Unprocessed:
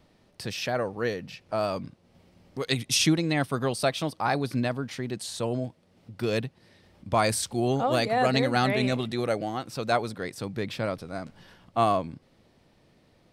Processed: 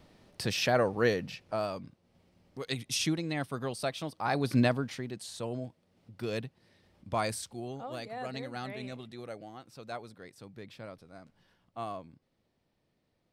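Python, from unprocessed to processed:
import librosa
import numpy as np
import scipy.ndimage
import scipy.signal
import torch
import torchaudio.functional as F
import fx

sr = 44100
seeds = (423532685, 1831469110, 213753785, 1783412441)

y = fx.gain(x, sr, db=fx.line((1.19, 2.0), (1.77, -8.0), (4.15, -8.0), (4.61, 3.0), (5.13, -7.5), (7.22, -7.5), (7.72, -15.5)))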